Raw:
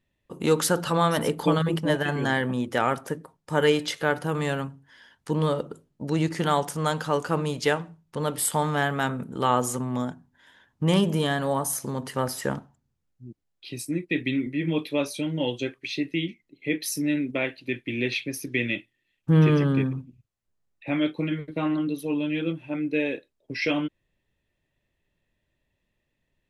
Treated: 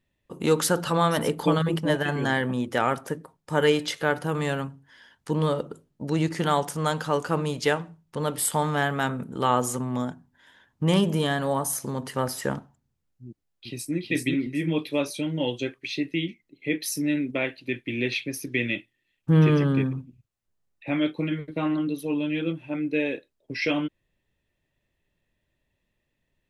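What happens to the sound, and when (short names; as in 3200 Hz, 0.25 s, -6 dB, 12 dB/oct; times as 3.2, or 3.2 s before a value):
13.27–13.96 echo throw 0.38 s, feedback 20%, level -1.5 dB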